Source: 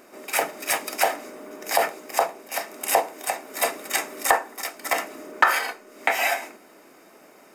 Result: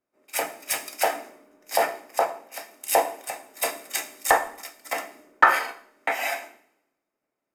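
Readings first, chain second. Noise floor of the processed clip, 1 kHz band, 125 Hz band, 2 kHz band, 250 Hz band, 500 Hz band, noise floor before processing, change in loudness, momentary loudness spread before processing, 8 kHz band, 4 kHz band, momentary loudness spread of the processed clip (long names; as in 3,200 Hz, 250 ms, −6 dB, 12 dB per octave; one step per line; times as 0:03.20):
−84 dBFS, −0.5 dB, can't be measured, −1.5 dB, −3.5 dB, −0.5 dB, −52 dBFS, −1.0 dB, 11 LU, −2.0 dB, −3.5 dB, 16 LU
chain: coupled-rooms reverb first 0.84 s, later 2.6 s, DRR 7.5 dB
multiband upward and downward expander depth 100%
level −5.5 dB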